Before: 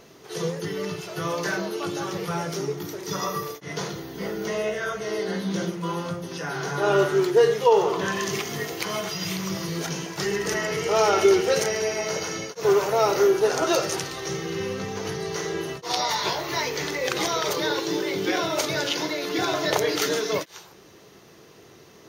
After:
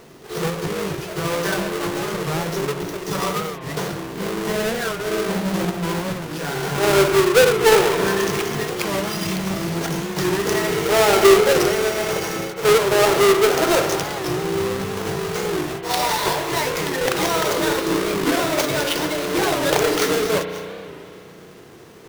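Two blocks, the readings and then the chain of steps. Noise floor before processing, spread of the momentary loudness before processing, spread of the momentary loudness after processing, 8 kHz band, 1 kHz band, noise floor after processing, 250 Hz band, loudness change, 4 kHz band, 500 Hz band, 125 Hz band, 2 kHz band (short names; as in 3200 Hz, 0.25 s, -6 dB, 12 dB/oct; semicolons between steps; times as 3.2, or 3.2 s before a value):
-50 dBFS, 11 LU, 11 LU, +4.5 dB, +5.0 dB, -41 dBFS, +6.0 dB, +5.0 dB, +4.5 dB, +5.0 dB, +6.0 dB, +6.0 dB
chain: half-waves squared off; spring tank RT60 2.9 s, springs 33 ms, chirp 25 ms, DRR 7.5 dB; record warp 45 rpm, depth 160 cents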